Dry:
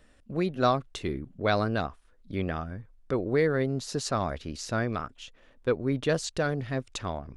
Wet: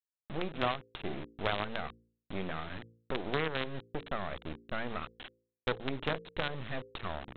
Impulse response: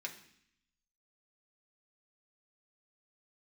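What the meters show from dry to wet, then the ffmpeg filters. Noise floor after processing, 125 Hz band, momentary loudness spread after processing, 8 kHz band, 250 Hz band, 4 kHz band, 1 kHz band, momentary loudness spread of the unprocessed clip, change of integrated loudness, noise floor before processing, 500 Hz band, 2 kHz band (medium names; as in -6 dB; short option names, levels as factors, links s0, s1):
under -85 dBFS, -10.5 dB, 10 LU, under -35 dB, -10.0 dB, -2.5 dB, -6.0 dB, 11 LU, -8.0 dB, -59 dBFS, -9.5 dB, -3.5 dB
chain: -af "aresample=8000,acrusher=bits=4:dc=4:mix=0:aa=0.000001,aresample=44100,acompressor=threshold=0.0282:ratio=2.5,bandreject=f=57.04:t=h:w=4,bandreject=f=114.08:t=h:w=4,bandreject=f=171.12:t=h:w=4,bandreject=f=228.16:t=h:w=4,bandreject=f=285.2:t=h:w=4,bandreject=f=342.24:t=h:w=4,bandreject=f=399.28:t=h:w=4,bandreject=f=456.32:t=h:w=4,bandreject=f=513.36:t=h:w=4"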